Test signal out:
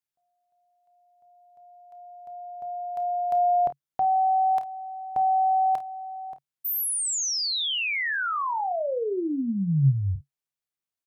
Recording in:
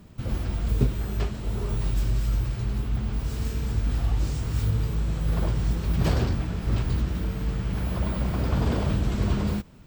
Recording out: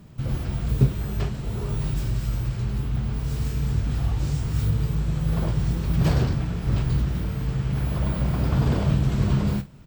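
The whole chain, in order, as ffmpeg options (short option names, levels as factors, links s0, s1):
-af "equalizer=f=140:w=4.2:g=10,aecho=1:1:30|51:0.237|0.168"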